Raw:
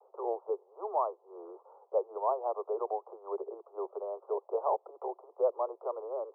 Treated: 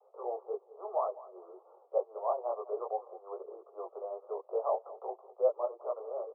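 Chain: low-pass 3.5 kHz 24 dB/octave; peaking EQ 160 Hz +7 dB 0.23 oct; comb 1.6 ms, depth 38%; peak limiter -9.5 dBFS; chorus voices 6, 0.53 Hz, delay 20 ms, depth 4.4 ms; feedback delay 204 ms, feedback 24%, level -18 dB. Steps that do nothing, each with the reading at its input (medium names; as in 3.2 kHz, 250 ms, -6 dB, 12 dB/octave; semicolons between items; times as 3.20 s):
low-pass 3.5 kHz: input has nothing above 1.3 kHz; peaking EQ 160 Hz: input has nothing below 320 Hz; peak limiter -9.5 dBFS: peak at its input -16.0 dBFS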